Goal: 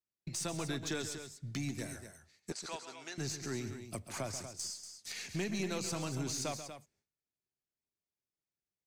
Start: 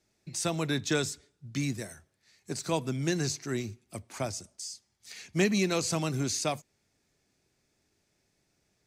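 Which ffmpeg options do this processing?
-filter_complex "[0:a]agate=range=-33dB:threshold=-54dB:ratio=3:detection=peak,acompressor=threshold=-46dB:ratio=2.5,aeval=exprs='0.0316*(cos(1*acos(clip(val(0)/0.0316,-1,1)))-cos(1*PI/2))+0.00158*(cos(5*acos(clip(val(0)/0.0316,-1,1)))-cos(5*PI/2))+0.00126*(cos(6*acos(clip(val(0)/0.0316,-1,1)))-cos(6*PI/2))':c=same,asettb=1/sr,asplit=3[a][b][c];[a]atrim=end=2.524[d];[b]atrim=start=2.52:end=3.18,asetpts=PTS-STARTPTS,afade=t=in:d=0.004:c=qsin,afade=t=out:st=0.656:d=0.004:c=qsin,highpass=740,lowpass=7.2k[e];[c]atrim=start=3.176[f];[d][e]acrossfade=d=0.004:c1=hsin:c2=qsin[g];[g][f]acrossfade=d=0.004:c1=qsin:c2=hsin,asplit=2[h][i];[i]aecho=0:1:137|239.1:0.282|0.316[j];[h][j]amix=inputs=2:normalize=0,volume=3.5dB"

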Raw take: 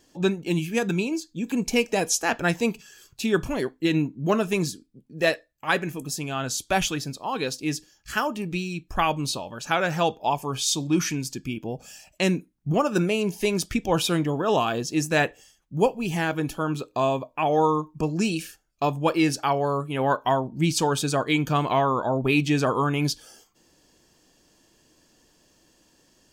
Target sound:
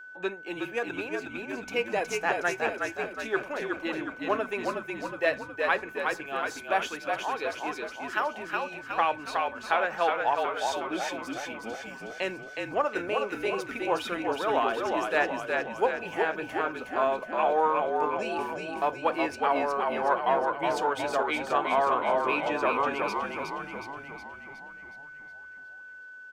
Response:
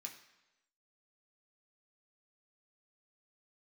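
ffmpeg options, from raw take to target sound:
-filter_complex "[0:a]aeval=exprs='if(lt(val(0),0),0.708*val(0),val(0))':c=same,acrossover=split=390 2700:gain=0.0708 1 0.141[a][b][c];[a][b][c]amix=inputs=3:normalize=0,asplit=9[d][e][f][g][h][i][j][k][l];[e]adelay=366,afreqshift=-46,volume=-3.5dB[m];[f]adelay=732,afreqshift=-92,volume=-8.4dB[n];[g]adelay=1098,afreqshift=-138,volume=-13.3dB[o];[h]adelay=1464,afreqshift=-184,volume=-18.1dB[p];[i]adelay=1830,afreqshift=-230,volume=-23dB[q];[j]adelay=2196,afreqshift=-276,volume=-27.9dB[r];[k]adelay=2562,afreqshift=-322,volume=-32.8dB[s];[l]adelay=2928,afreqshift=-368,volume=-37.7dB[t];[d][m][n][o][p][q][r][s][t]amix=inputs=9:normalize=0,aeval=exprs='val(0)+0.00708*sin(2*PI*1500*n/s)':c=same,lowshelf=f=150:g=-8.5"

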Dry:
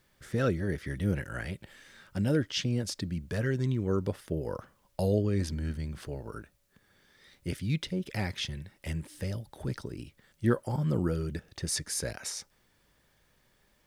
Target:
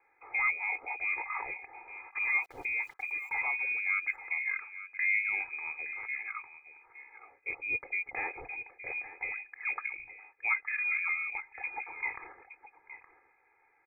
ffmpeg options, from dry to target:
-filter_complex "[0:a]highpass=210,lowpass=f=2.2k:t=q:w=0.5098,lowpass=f=2.2k:t=q:w=0.6013,lowpass=f=2.2k:t=q:w=0.9,lowpass=f=2.2k:t=q:w=2.563,afreqshift=-2600,aecho=1:1:2.4:0.87,asplit=2[a][b];[b]alimiter=level_in=1.5dB:limit=-24dB:level=0:latency=1:release=217,volume=-1.5dB,volume=2dB[c];[a][c]amix=inputs=2:normalize=0,asplit=3[d][e][f];[d]afade=t=out:st=2.23:d=0.02[g];[e]aeval=exprs='val(0)*gte(abs(val(0)),0.00355)':c=same,afade=t=in:st=2.23:d=0.02,afade=t=out:st=3.41:d=0.02[h];[f]afade=t=in:st=3.41:d=0.02[i];[g][h][i]amix=inputs=3:normalize=0,asplit=2[j][k];[k]aecho=0:1:868:0.2[l];[j][l]amix=inputs=2:normalize=0,asettb=1/sr,asplit=3[m][n][o];[m]atrim=end=9.544[p];[n]atrim=start=9.54:end=9.99,asetpts=PTS-STARTPTS,afade=t=in:d=0.004:c=qsin,afade=t=out:st=0.446:d=0.004:c=qsin,adynamicequalizer=threshold=0.00891:dfrequency=1500:dqfactor=1.1:tfrequency=1500:tqfactor=1.1:attack=5:release=100:ratio=0.375:range=2:mode=boostabove:tftype=bell[q];[o]atrim=start=9.986[r];[p][q]acrossfade=d=0.004:c1=hsin:c2=qsin[s];[s][r]acrossfade=d=0.004:c1=qsin:c2=hsin,volume=-7dB"

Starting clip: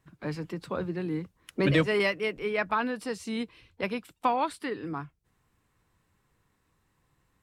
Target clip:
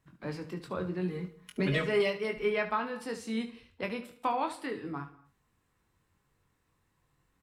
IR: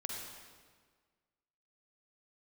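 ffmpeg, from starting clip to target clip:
-filter_complex "[0:a]asettb=1/sr,asplit=3[a][b][c];[a]atrim=end=1.024[d];[b]atrim=start=1.02:end=2.8,asetpts=PTS-STARTPTS,afade=t=in:d=0.004:c=qsin,afade=t=out:st=1.776:d=0.004:c=qsin,aecho=1:1:4.8:0.79,atrim=end_sample=78498[e];[c]atrim=start=2.796[f];[d][e]acrossfade=d=0.004:c1=hsin:c2=qsin[g];[g][f]acrossfade=d=0.004:c1=qsin:c2=hsin,alimiter=limit=-15.5dB:level=0:latency=1:release=375,aecho=1:1:22|72:0.501|0.237,asplit=2[h][i];[1:a]atrim=start_sample=2205,afade=t=out:st=0.3:d=0.01,atrim=end_sample=13671[j];[i][j]afir=irnorm=-1:irlink=0,volume=-12dB[k];[h][k]amix=inputs=2:normalize=0,volume=-5.5dB"

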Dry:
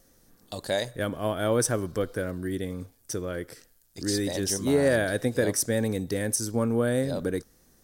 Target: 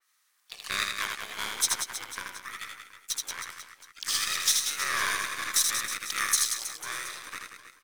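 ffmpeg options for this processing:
-filter_complex "[0:a]alimiter=limit=-19.5dB:level=0:latency=1:release=87,highpass=f=2k:t=q:w=3.1,aeval=exprs='0.126*(cos(1*acos(clip(val(0)/0.126,-1,1)))-cos(1*PI/2))+0.001*(cos(3*acos(clip(val(0)/0.126,-1,1)))-cos(3*PI/2))+0.0126*(cos(7*acos(clip(val(0)/0.126,-1,1)))-cos(7*PI/2))+0.00126*(cos(8*acos(clip(val(0)/0.126,-1,1)))-cos(8*PI/2))':c=same,asplit=3[a][b][c];[b]asetrate=29433,aresample=44100,atempo=1.49831,volume=-1dB[d];[c]asetrate=55563,aresample=44100,atempo=0.793701,volume=-11dB[e];[a][d][e]amix=inputs=3:normalize=0,aecho=1:1:80|184|319.2|495|723.4:0.631|0.398|0.251|0.158|0.1,adynamicequalizer=threshold=0.00708:dfrequency=3200:dqfactor=0.7:tfrequency=3200:tqfactor=0.7:attack=5:release=100:ratio=0.375:range=3:mode=boostabove:tftype=highshelf"

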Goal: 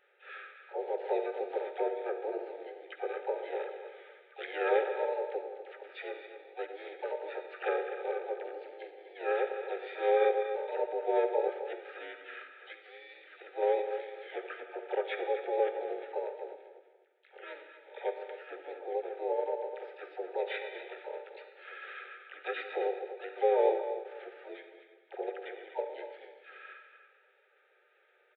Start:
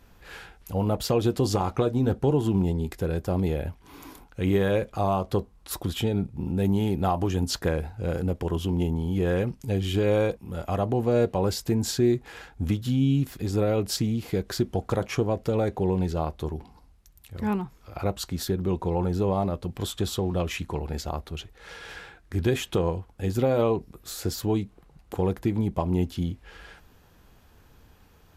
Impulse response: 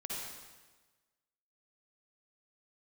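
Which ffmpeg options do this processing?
-filter_complex "[0:a]asuperpass=centerf=1100:order=20:qfactor=0.57,aecho=1:1:247|494|741:0.282|0.0676|0.0162,asplit=2[a][b];[1:a]atrim=start_sample=2205[c];[b][c]afir=irnorm=-1:irlink=0,volume=-4.5dB[d];[a][d]amix=inputs=2:normalize=0,afftfilt=real='re*(1-between(b*sr/4096,630,1500))':imag='im*(1-between(b*sr/4096,630,1500))':win_size=4096:overlap=0.75,asplit=3[e][f][g];[f]asetrate=35002,aresample=44100,atempo=1.25992,volume=-2dB[h];[g]asetrate=66075,aresample=44100,atempo=0.66742,volume=-6dB[i];[e][h][i]amix=inputs=3:normalize=0,volume=-5.5dB"

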